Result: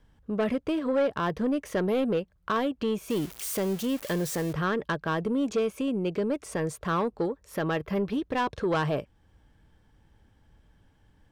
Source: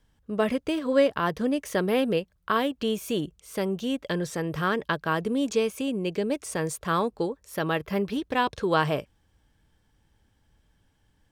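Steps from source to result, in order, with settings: 3.1–4.53 switching spikes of -23 dBFS; high shelf 3100 Hz -10 dB; in parallel at -1 dB: compressor, threshold -41 dBFS, peak gain reduction 22.5 dB; on the sum: soft clip -19.5 dBFS, distortion -14 dB

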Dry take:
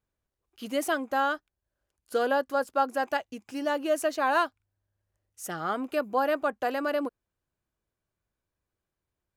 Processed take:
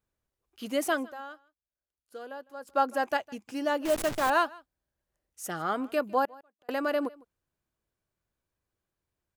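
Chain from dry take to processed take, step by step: 3.85–4.3 level-crossing sampler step -28.5 dBFS; notches 50/100 Hz; 1.05–2.7 dip -16 dB, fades 0.31 s exponential; 6.25–6.69 flipped gate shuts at -35 dBFS, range -39 dB; echo 0.155 s -23.5 dB

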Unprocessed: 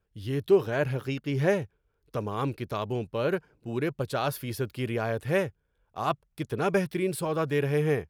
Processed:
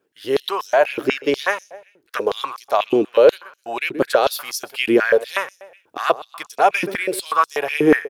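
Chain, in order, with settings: recorder AGC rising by 7.4 dB/s; 1.1–2.2 transient shaper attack +2 dB, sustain -5 dB; feedback echo 0.128 s, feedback 41%, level -18 dB; stepped high-pass 8.2 Hz 310–5800 Hz; gain +8 dB

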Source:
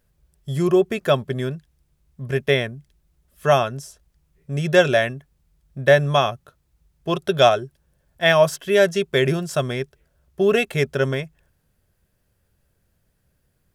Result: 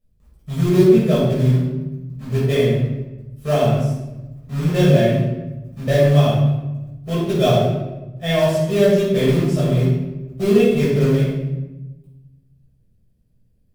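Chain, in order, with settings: EQ curve 300 Hz 0 dB, 1400 Hz -19 dB, 3000 Hz -10 dB; in parallel at -3 dB: companded quantiser 4-bit; on the sum: shoebox room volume 490 m³, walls mixed, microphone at 6.1 m; gain -10.5 dB

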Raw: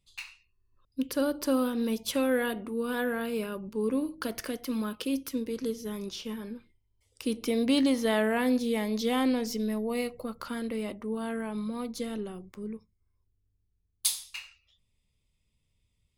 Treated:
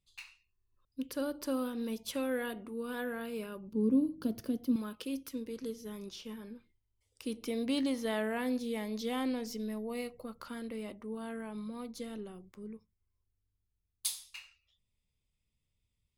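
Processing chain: 3.72–4.76 graphic EQ 125/250/1000/2000/8000 Hz +11/+9/-4/-12/-8 dB; gain -7.5 dB

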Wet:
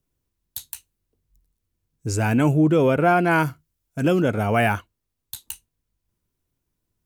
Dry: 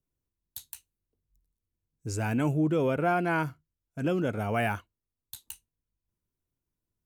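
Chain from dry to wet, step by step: 3.31–4.22 high shelf 5700 Hz +6.5 dB; gain +8.5 dB

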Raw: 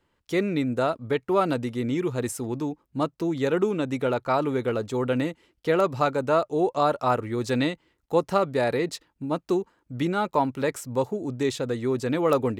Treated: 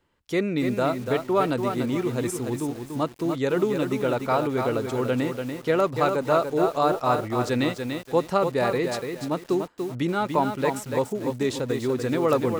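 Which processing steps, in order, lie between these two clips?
lo-fi delay 0.29 s, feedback 35%, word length 7-bit, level -5.5 dB

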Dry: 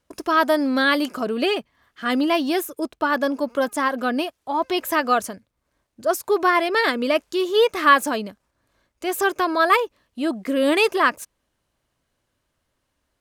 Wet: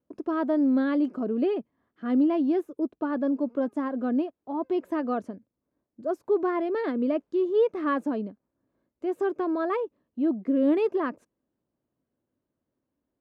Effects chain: band-pass 270 Hz, Q 1.3

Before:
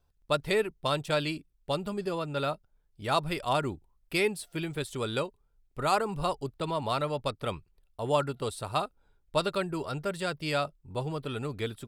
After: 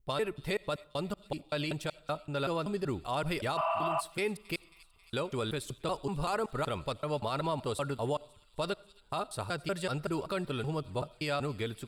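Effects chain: slices in reverse order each 0.19 s, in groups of 5; spectral repair 3.59–3.98, 620–3100 Hz before; limiter -23 dBFS, peak gain reduction 11 dB; thin delay 0.27 s, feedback 70%, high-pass 2800 Hz, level -19 dB; on a send at -22.5 dB: reverb RT60 0.50 s, pre-delay 40 ms

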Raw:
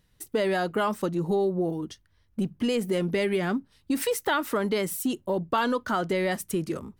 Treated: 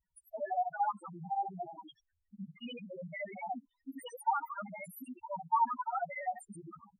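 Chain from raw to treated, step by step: local time reversal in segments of 57 ms; resonant low shelf 590 Hz -10.5 dB, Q 3; loudest bins only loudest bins 2; gain -2 dB

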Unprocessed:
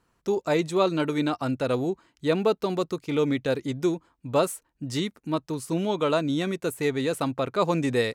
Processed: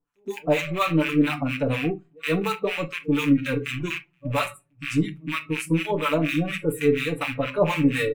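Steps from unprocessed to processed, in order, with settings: rattling part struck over -42 dBFS, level -20 dBFS; comb 6.9 ms, depth 74%; in parallel at -6 dB: short-mantissa float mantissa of 2-bit; on the sum: bell 4700 Hz -8.5 dB 0.64 oct; reverse echo 0.12 s -22 dB; harmonic tremolo 4.2 Hz, depth 100%, crossover 880 Hz; on a send at -8 dB: low shelf 160 Hz +4 dB + reverb RT60 0.40 s, pre-delay 4 ms; on the sum: spectral noise reduction 17 dB

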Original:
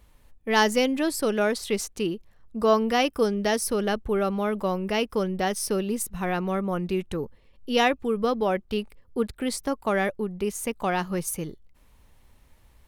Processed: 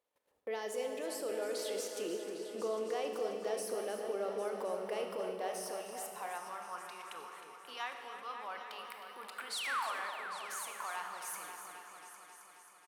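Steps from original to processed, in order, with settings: low shelf 71 Hz +8 dB; gate -43 dBFS, range -27 dB; transient shaper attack -8 dB, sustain -1 dB; limiter -37.5 dBFS, peak gain reduction 28.5 dB; vocal rider 0.5 s; painted sound fall, 9.52–10.01, 310–4800 Hz -45 dBFS; repeats that get brighter 0.268 s, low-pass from 750 Hz, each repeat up 2 oct, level -6 dB; high-pass sweep 490 Hz -> 1100 Hz, 5.23–6.86; echo 0.312 s -11.5 dB; Schroeder reverb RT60 1.6 s, combs from 25 ms, DRR 5.5 dB; gain +3.5 dB

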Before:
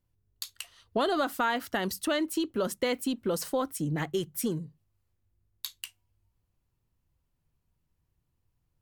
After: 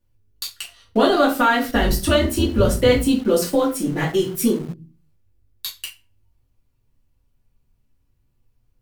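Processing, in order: 1.63–2.97 octaver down 2 oct, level +2 dB; reverb RT60 0.35 s, pre-delay 3 ms, DRR -5.5 dB; in parallel at -5 dB: sample gate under -33 dBFS

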